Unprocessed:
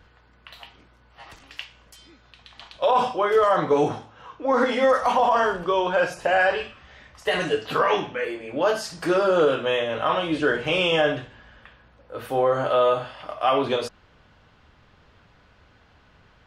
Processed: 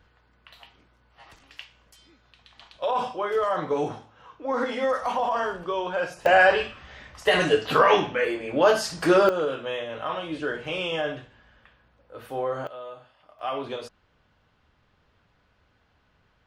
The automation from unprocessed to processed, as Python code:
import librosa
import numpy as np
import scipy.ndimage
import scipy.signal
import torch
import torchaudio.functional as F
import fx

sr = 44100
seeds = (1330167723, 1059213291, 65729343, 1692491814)

y = fx.gain(x, sr, db=fx.steps((0.0, -6.0), (6.26, 3.0), (9.29, -7.5), (12.67, -20.0), (13.39, -9.5)))